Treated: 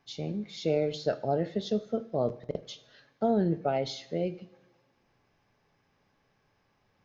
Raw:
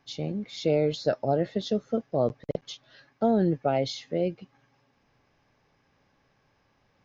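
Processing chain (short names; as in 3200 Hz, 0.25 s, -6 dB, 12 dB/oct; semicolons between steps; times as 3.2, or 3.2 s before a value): two-slope reverb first 0.57 s, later 1.7 s, from -17 dB, DRR 11 dB; gain -3.5 dB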